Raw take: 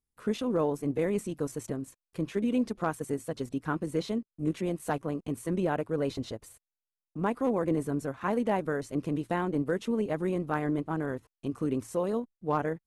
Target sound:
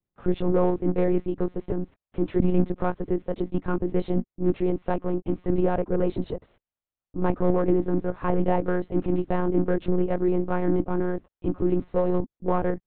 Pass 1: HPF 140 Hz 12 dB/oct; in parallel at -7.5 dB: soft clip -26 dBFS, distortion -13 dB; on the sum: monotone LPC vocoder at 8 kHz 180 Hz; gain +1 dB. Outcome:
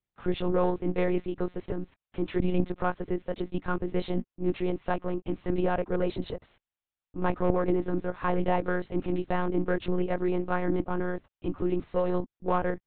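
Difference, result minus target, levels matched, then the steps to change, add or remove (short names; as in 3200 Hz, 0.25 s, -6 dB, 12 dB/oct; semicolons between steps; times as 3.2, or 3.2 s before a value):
1000 Hz band +3.0 dB
add after HPF: tilt shelf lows +6.5 dB, about 1100 Hz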